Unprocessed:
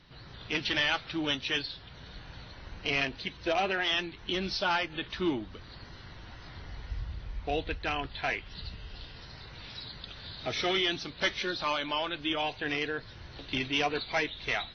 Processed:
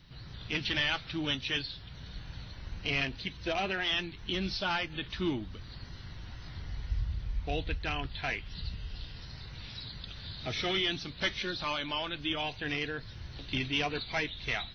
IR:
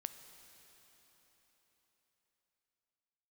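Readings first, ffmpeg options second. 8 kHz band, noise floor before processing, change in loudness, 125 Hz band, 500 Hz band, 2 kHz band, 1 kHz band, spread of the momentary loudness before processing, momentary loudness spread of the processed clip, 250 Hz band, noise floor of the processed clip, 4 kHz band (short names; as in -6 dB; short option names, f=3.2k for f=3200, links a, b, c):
n/a, -49 dBFS, -2.0 dB, +3.5 dB, -4.0 dB, -2.0 dB, -4.5 dB, 19 LU, 15 LU, -1.5 dB, -47 dBFS, -1.0 dB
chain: -filter_complex "[0:a]acrossover=split=5000[a][b];[b]acompressor=threshold=-54dB:ratio=4:attack=1:release=60[c];[a][c]amix=inputs=2:normalize=0,crystalizer=i=3.5:c=0,bass=f=250:g=10,treble=f=4k:g=-4,volume=-5.5dB"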